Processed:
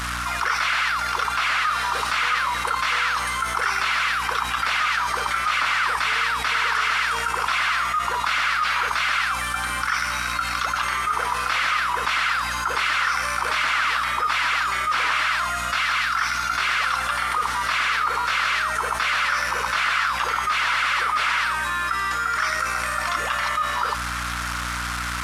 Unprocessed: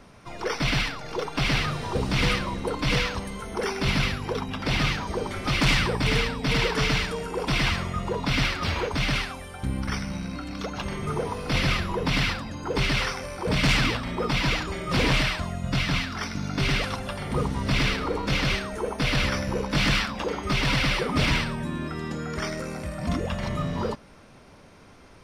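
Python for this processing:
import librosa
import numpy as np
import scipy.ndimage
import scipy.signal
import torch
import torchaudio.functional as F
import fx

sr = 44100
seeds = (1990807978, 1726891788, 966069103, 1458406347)

y = fx.delta_mod(x, sr, bps=64000, step_db=-40.5)
y = fx.highpass_res(y, sr, hz=1300.0, q=3.3)
y = fx.add_hum(y, sr, base_hz=60, snr_db=23)
y = fx.env_flatten(y, sr, amount_pct=70)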